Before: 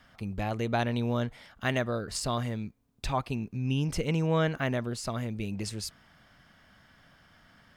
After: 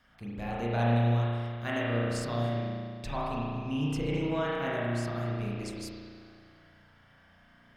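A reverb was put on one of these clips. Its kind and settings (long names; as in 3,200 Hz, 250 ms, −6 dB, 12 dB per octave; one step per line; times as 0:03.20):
spring reverb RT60 2.1 s, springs 34 ms, chirp 70 ms, DRR −6.5 dB
level −8 dB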